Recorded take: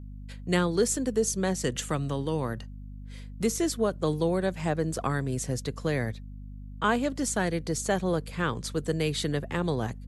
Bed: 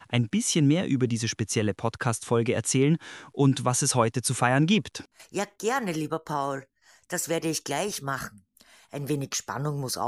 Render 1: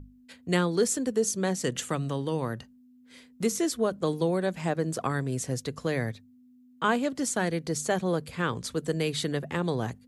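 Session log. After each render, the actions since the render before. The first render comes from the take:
mains-hum notches 50/100/150/200 Hz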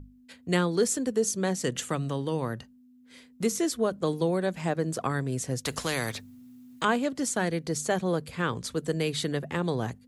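0:05.65–0:06.85: every bin compressed towards the loudest bin 2 to 1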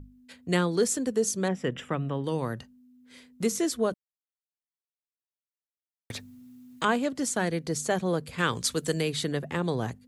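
0:01.48–0:02.24: Savitzky-Golay smoothing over 25 samples
0:03.94–0:06.10: silence
0:08.38–0:09.01: high-shelf EQ 2,000 Hz +10 dB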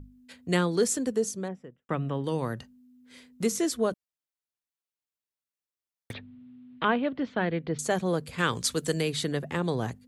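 0:01.01–0:01.89: fade out and dull
0:06.13–0:07.79: Butterworth low-pass 3,500 Hz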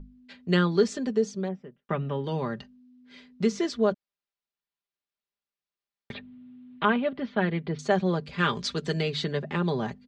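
low-pass filter 5,000 Hz 24 dB per octave
comb filter 5 ms, depth 64%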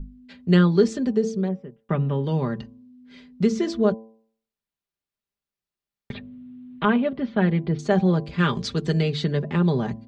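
low-shelf EQ 310 Hz +10.5 dB
hum removal 111.6 Hz, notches 10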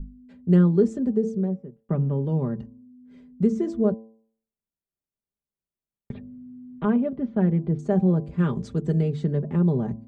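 drawn EQ curve 220 Hz 0 dB, 540 Hz −3 dB, 4,500 Hz −22 dB, 8,100 Hz −7 dB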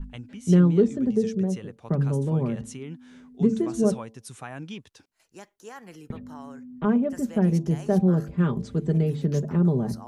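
mix in bed −16 dB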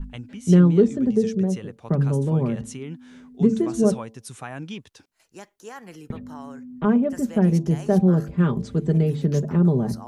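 level +3 dB

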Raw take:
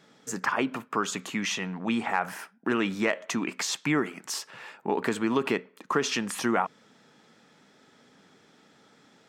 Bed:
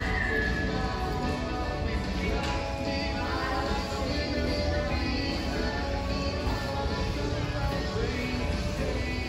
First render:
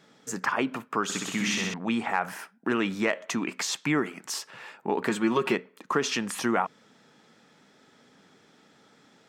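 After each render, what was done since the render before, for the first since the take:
0:01.03–0:01.74: flutter between parallel walls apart 10.8 metres, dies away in 1.2 s
0:05.09–0:05.55: comb filter 5.5 ms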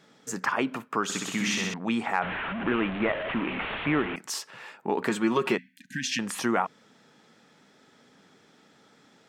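0:02.22–0:04.16: linear delta modulator 16 kbit/s, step −26 dBFS
0:05.58–0:06.19: linear-phase brick-wall band-stop 290–1,500 Hz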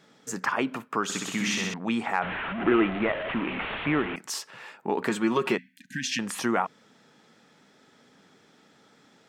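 0:02.58–0:02.99: hollow resonant body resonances 350/710/1,300/2,000 Hz, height 9 dB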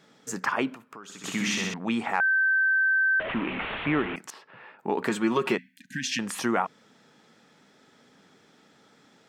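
0:00.74–0:01.24: downward compressor 2.5 to 1, threshold −48 dBFS
0:02.20–0:03.20: beep over 1,550 Hz −19.5 dBFS
0:04.30–0:04.79: high-frequency loss of the air 470 metres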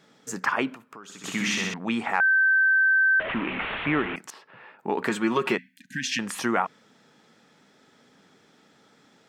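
dynamic equaliser 1,800 Hz, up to +3 dB, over −37 dBFS, Q 0.79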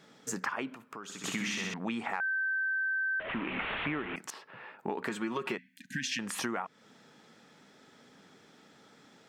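downward compressor 5 to 1, threshold −32 dBFS, peak gain reduction 12.5 dB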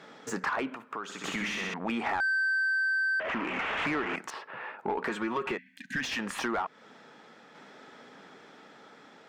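shaped tremolo saw down 0.53 Hz, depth 35%
mid-hump overdrive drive 20 dB, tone 1,300 Hz, clips at −17.5 dBFS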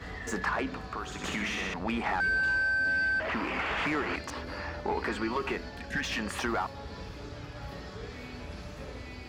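mix in bed −12.5 dB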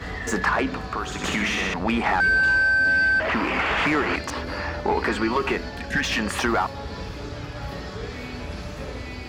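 level +8.5 dB

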